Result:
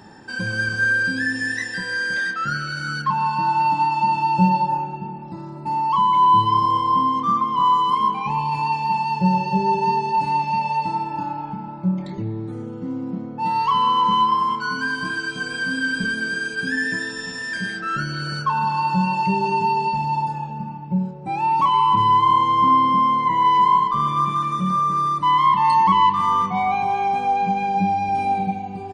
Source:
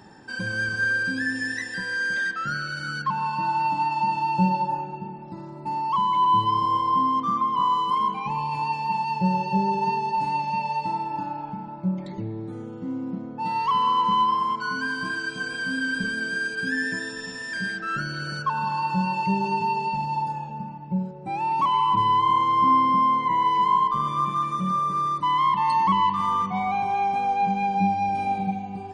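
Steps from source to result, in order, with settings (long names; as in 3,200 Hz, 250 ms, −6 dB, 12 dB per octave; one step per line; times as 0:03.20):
double-tracking delay 28 ms −9.5 dB
level +3.5 dB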